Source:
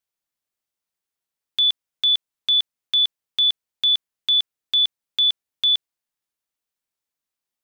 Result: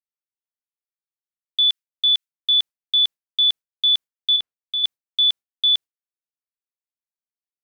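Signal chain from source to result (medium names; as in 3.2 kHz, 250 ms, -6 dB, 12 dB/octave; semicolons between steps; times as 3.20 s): 1.69–2.53 s: high-pass 1.3 kHz 24 dB/octave; gate with hold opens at -14 dBFS; 4.36–4.84 s: low-pass 1.9 kHz 6 dB/octave; trim +1 dB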